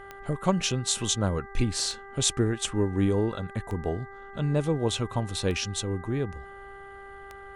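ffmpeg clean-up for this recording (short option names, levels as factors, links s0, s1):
-af "adeclick=t=4,bandreject=f=395.4:t=h:w=4,bandreject=f=790.8:t=h:w=4,bandreject=f=1186.2:t=h:w=4,bandreject=f=1581.6:t=h:w=4,bandreject=f=1977:t=h:w=4"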